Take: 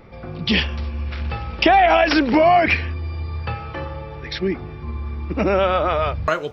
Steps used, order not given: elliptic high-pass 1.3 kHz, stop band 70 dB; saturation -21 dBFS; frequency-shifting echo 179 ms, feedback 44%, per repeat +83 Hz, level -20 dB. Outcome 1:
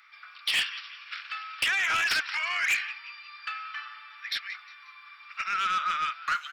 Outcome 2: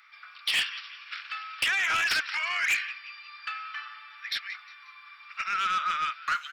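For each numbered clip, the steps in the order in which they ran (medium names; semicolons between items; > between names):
frequency-shifting echo > elliptic high-pass > saturation; elliptic high-pass > frequency-shifting echo > saturation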